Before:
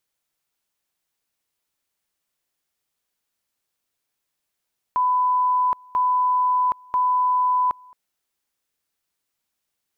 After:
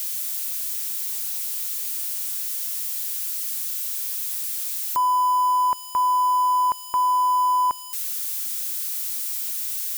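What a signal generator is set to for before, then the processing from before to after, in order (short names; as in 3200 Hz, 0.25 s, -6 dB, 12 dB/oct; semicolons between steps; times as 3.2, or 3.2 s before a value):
two-level tone 1000 Hz -16.5 dBFS, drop 27.5 dB, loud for 0.77 s, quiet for 0.22 s, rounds 3
switching spikes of -24.5 dBFS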